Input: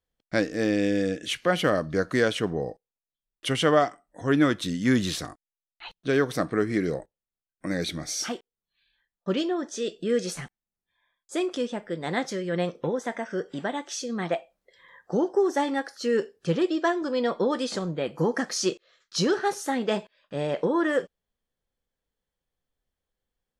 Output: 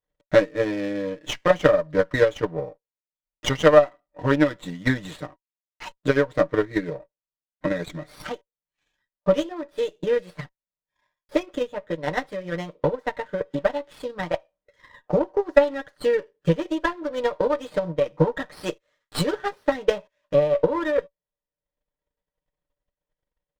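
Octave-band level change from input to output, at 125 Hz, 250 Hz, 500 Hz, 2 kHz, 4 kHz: +3.0, -1.0, +5.0, +2.0, -2.5 dB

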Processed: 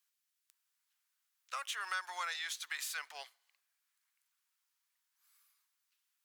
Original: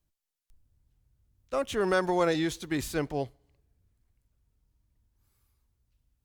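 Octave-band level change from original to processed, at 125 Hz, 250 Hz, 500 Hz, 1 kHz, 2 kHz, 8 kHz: under -40 dB, under -40 dB, -30.0 dB, -9.0 dB, -4.0 dB, -1.5 dB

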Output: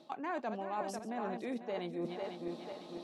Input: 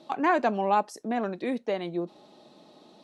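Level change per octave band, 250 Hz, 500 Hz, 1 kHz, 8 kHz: -9.0, -9.5, -12.5, -5.0 dB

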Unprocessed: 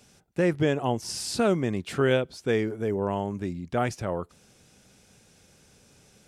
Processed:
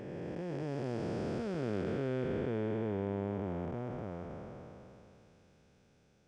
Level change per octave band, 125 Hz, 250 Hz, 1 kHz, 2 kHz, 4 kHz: -7.5, -8.5, -13.0, -15.0, -19.0 dB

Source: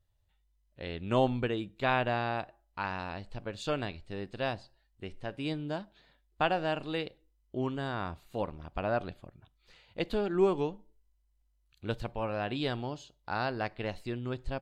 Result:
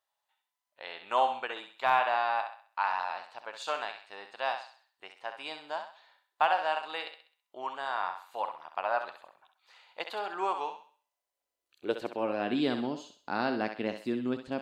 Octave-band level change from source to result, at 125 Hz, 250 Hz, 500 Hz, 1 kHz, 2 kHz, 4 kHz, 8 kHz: under -10 dB, -1.0 dB, -2.0 dB, +5.5 dB, +2.5 dB, +1.0 dB, n/a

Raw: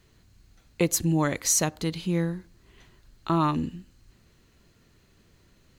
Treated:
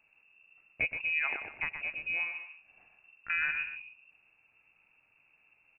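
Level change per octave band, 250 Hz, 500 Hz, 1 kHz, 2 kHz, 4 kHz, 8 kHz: under -30 dB, -22.0 dB, -15.0 dB, +8.0 dB, -11.5 dB, under -40 dB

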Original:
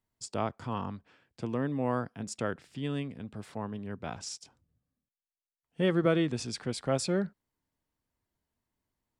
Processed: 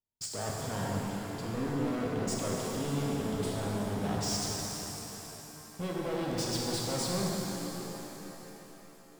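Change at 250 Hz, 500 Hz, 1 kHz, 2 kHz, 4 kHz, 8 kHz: -0.5, -2.0, +0.5, -1.5, +5.0, +7.5 dB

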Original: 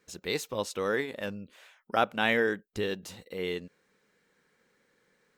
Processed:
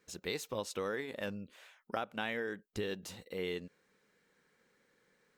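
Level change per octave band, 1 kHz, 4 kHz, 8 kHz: -10.5, -7.5, -4.5 dB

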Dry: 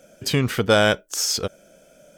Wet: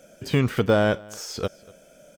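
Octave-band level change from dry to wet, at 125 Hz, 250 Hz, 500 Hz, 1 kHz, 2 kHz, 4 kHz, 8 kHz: 0.0, 0.0, -1.5, -4.0, -6.0, -10.5, -13.0 dB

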